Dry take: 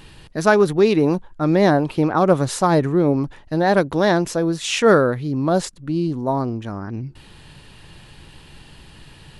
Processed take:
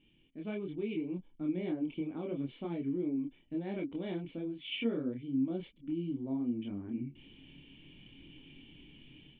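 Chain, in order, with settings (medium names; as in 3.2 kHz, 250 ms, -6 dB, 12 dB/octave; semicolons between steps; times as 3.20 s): bass shelf 320 Hz -12 dB; level rider gain up to 12 dB; cascade formant filter i; compression, threshold -27 dBFS, peak gain reduction 8 dB; chorus voices 4, 0.75 Hz, delay 26 ms, depth 4.3 ms; trim -2 dB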